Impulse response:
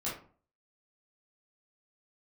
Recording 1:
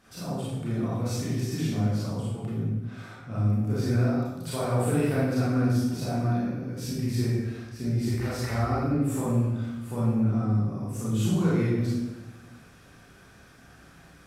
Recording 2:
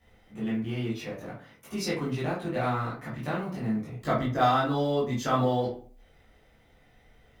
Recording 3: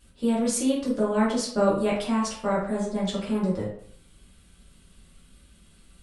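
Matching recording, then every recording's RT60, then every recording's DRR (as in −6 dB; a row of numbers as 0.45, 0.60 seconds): 2; 1.1, 0.45, 0.60 seconds; −8.5, −8.5, −6.5 decibels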